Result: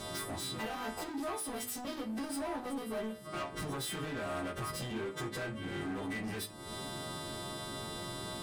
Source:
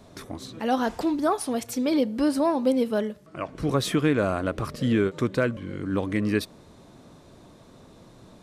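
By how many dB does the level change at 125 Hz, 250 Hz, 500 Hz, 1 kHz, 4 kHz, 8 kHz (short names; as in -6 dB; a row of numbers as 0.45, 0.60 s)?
-12.5, -15.0, -14.0, -10.0, -4.0, -2.5 dB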